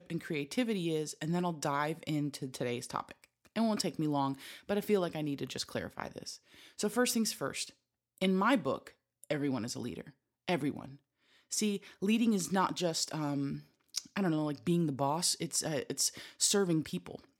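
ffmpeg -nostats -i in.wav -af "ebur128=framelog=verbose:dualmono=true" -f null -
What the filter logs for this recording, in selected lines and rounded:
Integrated loudness:
  I:         -30.8 LUFS
  Threshold: -41.3 LUFS
Loudness range:
  LRA:         3.7 LU
  Threshold: -51.6 LUFS
  LRA low:   -33.1 LUFS
  LRA high:  -29.5 LUFS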